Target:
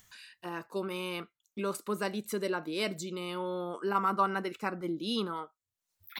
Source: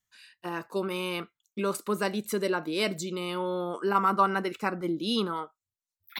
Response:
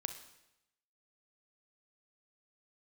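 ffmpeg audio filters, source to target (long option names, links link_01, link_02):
-af "acompressor=mode=upward:threshold=-39dB:ratio=2.5,volume=-4.5dB"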